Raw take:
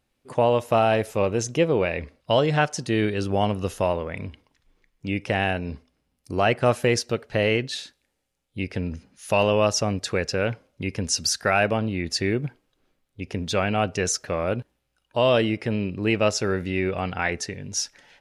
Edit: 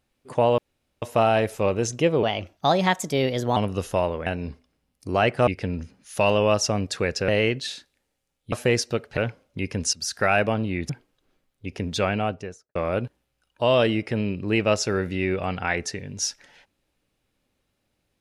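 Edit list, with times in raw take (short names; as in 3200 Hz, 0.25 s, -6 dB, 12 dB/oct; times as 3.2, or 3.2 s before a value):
0.58 insert room tone 0.44 s
1.79–3.43 speed 123%
4.13–5.5 cut
6.71–7.36 swap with 8.6–10.41
11.17–11.45 fade in, from -16.5 dB
12.13–12.44 cut
13.57–14.3 studio fade out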